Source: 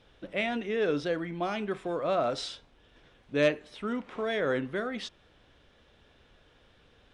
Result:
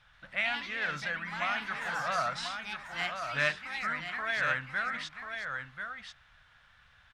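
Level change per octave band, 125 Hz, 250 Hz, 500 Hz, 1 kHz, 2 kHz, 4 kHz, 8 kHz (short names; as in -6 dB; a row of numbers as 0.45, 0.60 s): -5.0, -14.0, -12.0, +2.0, +6.5, +1.5, +2.5 dB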